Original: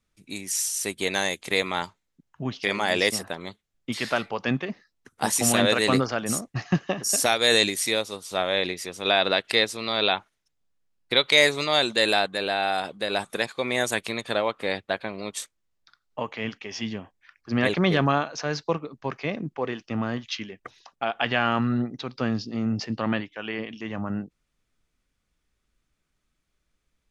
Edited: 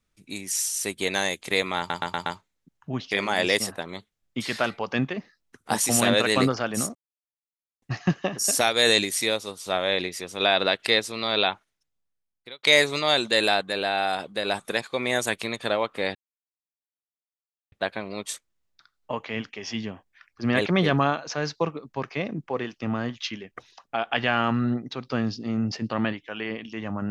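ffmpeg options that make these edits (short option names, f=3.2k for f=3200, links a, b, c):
-filter_complex "[0:a]asplit=8[a][b][c][d][e][f][g][h];[a]atrim=end=1.902[i];[b]atrim=start=1.778:end=1.902[j];[c]atrim=start=1.778:end=1.902[k];[d]atrim=start=1.778:end=1.902[l];[e]atrim=start=1.778:end=6.47,asetpts=PTS-STARTPTS,afade=t=out:st=4.688:d=0.004:c=hsin,apad=pad_dur=0.87[m];[f]atrim=start=6.47:end=11.28,asetpts=PTS-STARTPTS,afade=t=in:d=0.004:c=hsin,afade=t=out:st=3.62:d=1.19[n];[g]atrim=start=11.28:end=14.8,asetpts=PTS-STARTPTS,afade=t=in:d=0.004:c=hsin,afade=t=out:st=3.516:d=0.004:c=hsin,apad=pad_dur=1.57[o];[h]atrim=start=14.8,asetpts=PTS-STARTPTS,afade=t=in:d=0.004:c=hsin[p];[i][j]acrossfade=d=0.004:c1=hsin:c2=hsin[q];[q][k]acrossfade=d=0.004:c1=hsin:c2=hsin[r];[r][l]acrossfade=d=0.004:c1=hsin:c2=hsin[s];[m][n][o][p]concat=n=4:v=0:a=1[t];[s][t]acrossfade=d=0.004:c1=hsin:c2=hsin"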